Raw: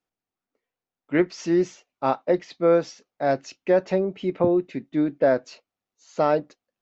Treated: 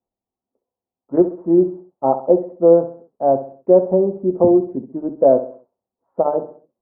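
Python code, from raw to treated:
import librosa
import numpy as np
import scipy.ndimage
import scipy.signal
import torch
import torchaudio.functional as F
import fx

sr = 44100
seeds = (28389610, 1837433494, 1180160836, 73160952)

p1 = scipy.signal.sosfilt(scipy.signal.butter(6, 980.0, 'lowpass', fs=sr, output='sos'), x)
p2 = fx.dynamic_eq(p1, sr, hz=500.0, q=0.87, threshold_db=-32.0, ratio=4.0, max_db=3)
p3 = fx.notch_comb(p2, sr, f0_hz=150.0)
p4 = p3 + fx.echo_feedback(p3, sr, ms=66, feedback_pct=40, wet_db=-12.0, dry=0)
y = p4 * 10.0 ** (5.0 / 20.0)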